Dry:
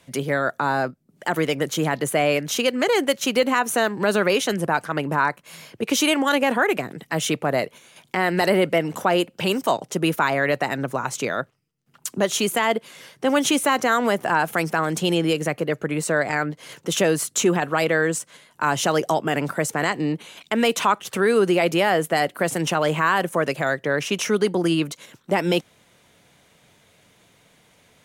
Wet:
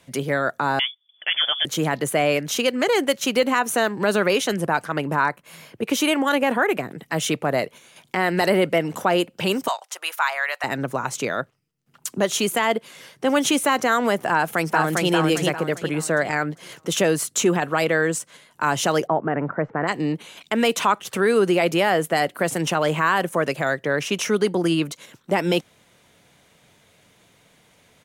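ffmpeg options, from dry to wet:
-filter_complex "[0:a]asettb=1/sr,asplit=3[s0][s1][s2];[s0]atrim=end=0.794[s3];[s1]atrim=start=0.79:end=1.65,asetpts=PTS-STARTPTS,afade=t=in:d=0.004:c=qsin,afade=t=out:st=0.856:d=0.004:c=qsin,lowpass=f=3100:t=q:w=0.5098,lowpass=f=3100:t=q:w=0.6013,lowpass=f=3100:t=q:w=0.9,lowpass=f=3100:t=q:w=2.563,afreqshift=-3600[s4];[s2]atrim=start=1.646[s5];[s3][s4]acrossfade=d=0.004:c1=hsin:c2=qsin[s6];[s6][s5]acrossfade=d=0.004:c1=qsin:c2=hsin,asettb=1/sr,asplit=3[s7][s8][s9];[s7]atrim=end=5.294[s10];[s8]atrim=start=5.29:end=7.07,asetpts=PTS-STARTPTS,afade=t=in:d=0.004:c=qsin,afade=t=out:st=1.776:d=0.004:c=qsin,equalizer=f=5500:t=o:w=1.6:g=-4.5[s11];[s9]atrim=start=7.066[s12];[s10][s11]acrossfade=d=0.004:c1=hsin:c2=qsin[s13];[s13][s12]acrossfade=d=0.004:c1=qsin:c2=hsin,asettb=1/sr,asplit=3[s14][s15][s16];[s14]atrim=end=9.684[s17];[s15]atrim=start=9.68:end=10.64,asetpts=PTS-STARTPTS,afade=t=in:d=0.004:c=qsin,afade=t=out:st=0.956:d=0.004:c=qsin,highpass=f=820:w=0.5412,highpass=f=820:w=1.3066[s18];[s16]atrim=start=10.636[s19];[s17][s18]acrossfade=d=0.004:c1=hsin:c2=qsin[s20];[s20][s19]acrossfade=d=0.004:c1=qsin:c2=hsin,asplit=2[s21][s22];[s22]afade=t=in:st=14.33:d=0.01,afade=t=out:st=15.1:d=0.01,aecho=0:1:400|800|1200|1600|2000:0.794328|0.278015|0.0973052|0.0340568|0.0119199[s23];[s21][s23]amix=inputs=2:normalize=0,asplit=3[s24][s25][s26];[s24]afade=t=out:st=19.06:d=0.02[s27];[s25]lowpass=f=1700:w=0.5412,lowpass=f=1700:w=1.3066,afade=t=in:st=19.06:d=0.02,afade=t=out:st=19.87:d=0.02[s28];[s26]afade=t=in:st=19.87:d=0.02[s29];[s27][s28][s29]amix=inputs=3:normalize=0"

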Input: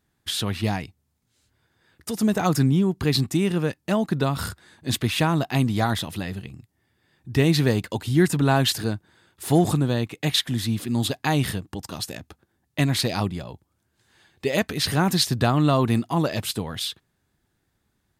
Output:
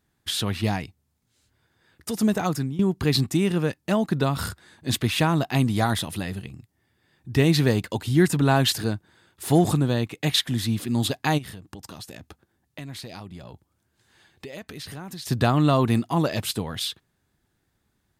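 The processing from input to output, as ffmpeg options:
-filter_complex "[0:a]asettb=1/sr,asplit=3[s0][s1][s2];[s0]atrim=end=5.634[s3];[s1]atrim=start=5.63:end=6.48,asetpts=PTS-STARTPTS,afade=t=in:d=0.004:c=qsin,afade=t=out:st=0.846:d=0.004:c=qsin,equalizer=f=9800:w=2:g=5.5[s4];[s2]atrim=start=6.476[s5];[s3][s4]acrossfade=d=0.004:c1=hsin:c2=qsin[s6];[s6][s5]acrossfade=d=0.004:c1=qsin:c2=hsin,asplit=3[s7][s8][s9];[s7]afade=t=out:st=11.37:d=0.02[s10];[s8]acompressor=threshold=0.0158:ratio=5:attack=3.2:release=140:knee=1:detection=peak,afade=t=in:st=11.37:d=0.02,afade=t=out:st=15.25:d=0.02[s11];[s9]afade=t=in:st=15.25:d=0.02[s12];[s10][s11][s12]amix=inputs=3:normalize=0,asplit=2[s13][s14];[s13]atrim=end=2.79,asetpts=PTS-STARTPTS,afade=t=out:st=2.27:d=0.52:silence=0.149624[s15];[s14]atrim=start=2.79,asetpts=PTS-STARTPTS,afade=t=in:d=0.004:c=hsin:silence=0.149624[s16];[s15][s16]concat=n=2:v=0:a=1"

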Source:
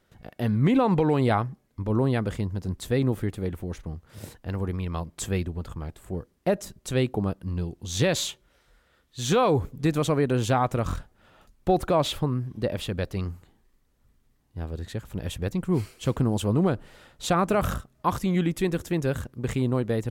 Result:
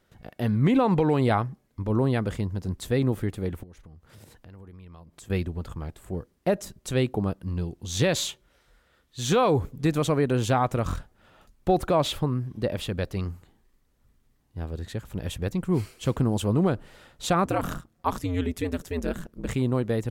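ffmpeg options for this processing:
-filter_complex "[0:a]asettb=1/sr,asplit=3[s0][s1][s2];[s0]atrim=end=3.634[s3];[s1]atrim=start=3.63:end=5.3,asetpts=PTS-STARTPTS,afade=t=in:d=0.004:c=qsin,afade=t=out:st=1.666:d=0.004:c=qsin,acompressor=threshold=0.00447:ratio=4:attack=3.2:release=140:knee=1:detection=peak[s4];[s2]atrim=start=5.296[s5];[s3][s4]acrossfade=d=0.004:c1=hsin:c2=qsin[s6];[s6][s5]acrossfade=d=0.004:c1=qsin:c2=hsin,asettb=1/sr,asplit=3[s7][s8][s9];[s7]atrim=end=17.454[s10];[s8]atrim=start=17.45:end=19.48,asetpts=PTS-STARTPTS,afade=t=in:d=0.004:c=qsin,afade=t=out:st=2.026:d=0.004:c=qsin,aeval=exprs='val(0)*sin(2*PI*88*n/s)':c=same[s11];[s9]atrim=start=19.476[s12];[s10][s11]acrossfade=d=0.004:c1=hsin:c2=qsin[s13];[s13][s12]acrossfade=d=0.004:c1=qsin:c2=hsin"

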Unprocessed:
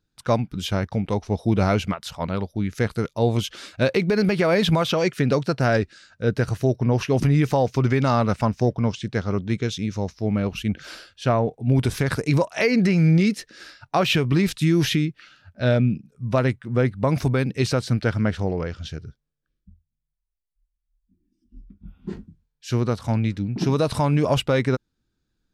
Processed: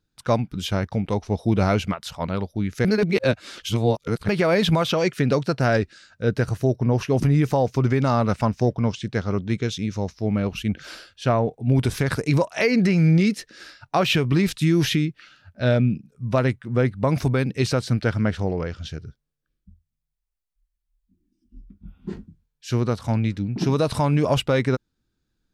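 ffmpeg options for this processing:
-filter_complex "[0:a]asettb=1/sr,asplit=3[s0][s1][s2];[s0]atrim=end=6.434[s3];[s1]atrim=start=6.43:end=8.26,asetpts=PTS-STARTPTS,afade=t=in:d=0.004:c=qsin,afade=t=out:st=1.826:d=0.004:c=qsin,equalizer=f=3000:w=0.59:g=-3.5[s4];[s2]atrim=start=8.256[s5];[s3][s4]acrossfade=d=0.004:c1=hsin:c2=qsin[s6];[s6][s5]acrossfade=d=0.004:c1=qsin:c2=hsin,asplit=3[s7][s8][s9];[s7]atrim=end=2.852[s10];[s8]atrim=start=2.848:end=4.282,asetpts=PTS-STARTPTS,areverse[s11];[s9]atrim=start=4.278[s12];[s10][s11]acrossfade=d=0.004:c1=hsin:c2=hsin[s13];[s13][s12]acrossfade=d=0.004:c1=hsin:c2=hsin"

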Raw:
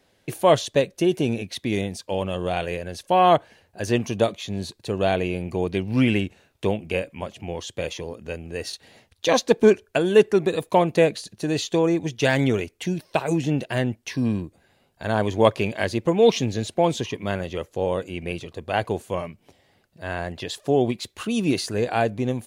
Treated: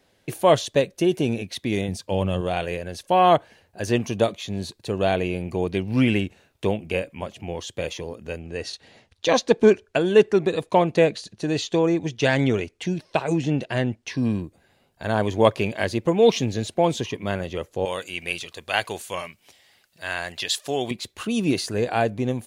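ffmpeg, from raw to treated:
-filter_complex "[0:a]asettb=1/sr,asplit=3[s0][s1][s2];[s0]atrim=end=1.884[s3];[s1]atrim=start=1.88:end=2.41,asetpts=PTS-STARTPTS,afade=t=in:d=0.004:c=qsin,afade=t=out:st=0.526:d=0.004:c=qsin,equalizer=f=110:w=0.64:g=7.5[s4];[s2]atrim=start=2.406[s5];[s3][s4]acrossfade=d=0.004:c1=hsin:c2=qsin[s6];[s6][s5]acrossfade=d=0.004:c1=qsin:c2=hsin,asettb=1/sr,asplit=3[s7][s8][s9];[s7]atrim=end=8.394[s10];[s8]atrim=start=8.39:end=14.23,asetpts=PTS-STARTPTS,afade=t=in:d=0.004:c=qsin,afade=t=out:st=5.836:d=0.004:c=qsin,lowpass=7400[s11];[s9]atrim=start=14.226[s12];[s10][s11]acrossfade=d=0.004:c1=hsin:c2=qsin[s13];[s13][s12]acrossfade=d=0.004:c1=qsin:c2=hsin,asettb=1/sr,asplit=3[s14][s15][s16];[s14]atrim=end=17.854[s17];[s15]atrim=start=17.85:end=20.91,asetpts=PTS-STARTPTS,afade=t=in:d=0.004:c=qsin,afade=t=out:st=3.056:d=0.004:c=qsin,tiltshelf=f=970:g=-10[s18];[s16]atrim=start=20.906[s19];[s17][s18]acrossfade=d=0.004:c1=hsin:c2=qsin[s20];[s20][s19]acrossfade=d=0.004:c1=qsin:c2=hsin"

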